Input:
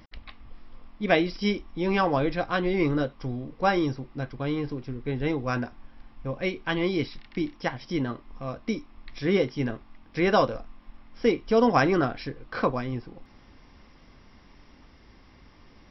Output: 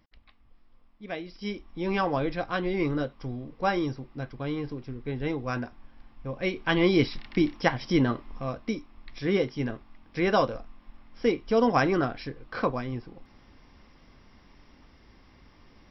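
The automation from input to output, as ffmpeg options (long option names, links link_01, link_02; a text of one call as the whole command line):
ffmpeg -i in.wav -af "volume=5dB,afade=type=in:start_time=1.23:duration=0.65:silence=0.281838,afade=type=in:start_time=6.31:duration=0.66:silence=0.398107,afade=type=out:start_time=8.1:duration=0.63:silence=0.446684" out.wav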